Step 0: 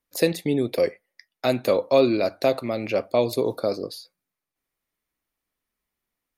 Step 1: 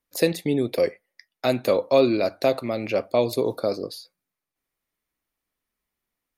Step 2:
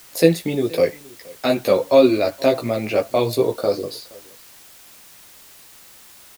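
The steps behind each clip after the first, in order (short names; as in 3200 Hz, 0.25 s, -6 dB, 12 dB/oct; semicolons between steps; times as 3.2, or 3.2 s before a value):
nothing audible
chorus voices 4, 0.46 Hz, delay 15 ms, depth 4.6 ms; echo 0.471 s -23.5 dB; added noise white -53 dBFS; gain +7 dB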